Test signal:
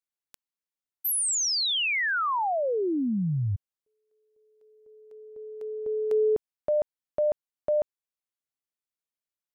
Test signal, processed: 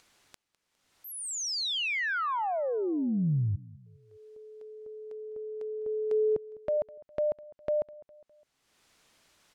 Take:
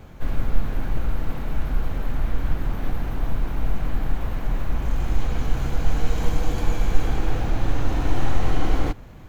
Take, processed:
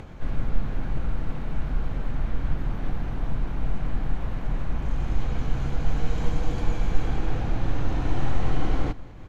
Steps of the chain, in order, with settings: dynamic bell 150 Hz, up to +4 dB, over -39 dBFS, Q 1.5; upward compressor, threshold -30 dBFS; distance through air 57 m; feedback delay 204 ms, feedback 48%, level -21 dB; trim -3.5 dB

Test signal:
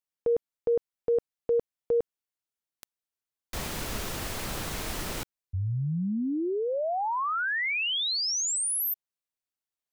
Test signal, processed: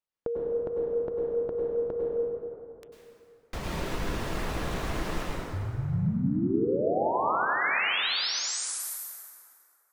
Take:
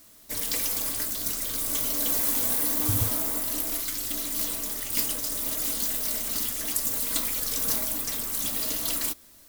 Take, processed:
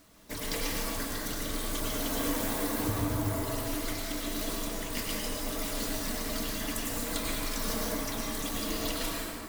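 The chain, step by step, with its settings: de-hum 119.1 Hz, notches 30; reverb removal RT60 1.6 s; low-pass 2.1 kHz 6 dB/octave; compression, threshold -33 dBFS; plate-style reverb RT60 2.8 s, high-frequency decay 0.55×, pre-delay 85 ms, DRR -4 dB; trim +2.5 dB

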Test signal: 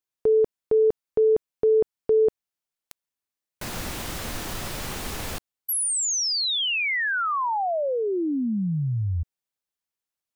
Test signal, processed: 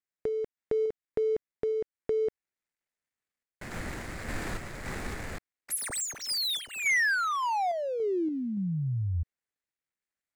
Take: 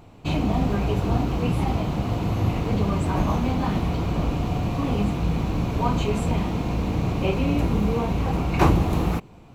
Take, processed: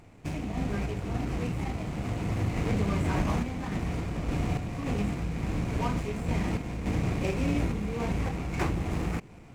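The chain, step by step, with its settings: median filter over 15 samples; graphic EQ 1/2/8 kHz -4/+10/+9 dB; compression 2.5:1, threshold -25 dBFS; random-step tremolo

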